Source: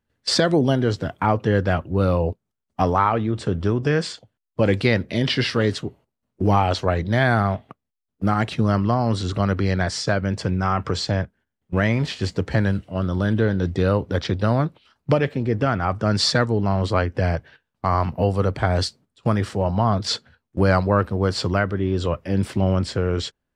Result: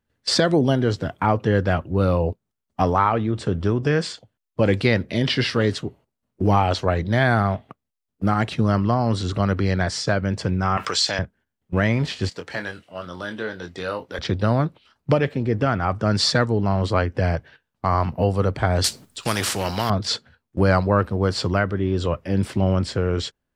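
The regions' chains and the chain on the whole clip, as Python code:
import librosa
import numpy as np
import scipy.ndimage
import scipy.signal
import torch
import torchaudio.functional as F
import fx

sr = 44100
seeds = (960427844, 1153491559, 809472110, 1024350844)

y = fx.chain(x, sr, fx.highpass(hz=1400.0, slope=6),
    fx.high_shelf(hz=2100.0, db=8.5),
    fx.env_flatten(amount_pct=50), at=(10.77, 11.19))
y = fx.chain(y, sr, fx.highpass(hz=1100.0, slope=6),
    fx.doubler(ms=23.0, db=-7), at=(12.29, 14.19))
y = fx.chain(y, sr, fx.high_shelf(hz=3200.0, db=11.0),
    fx.spectral_comp(ratio=2.0), at=(18.84, 19.9))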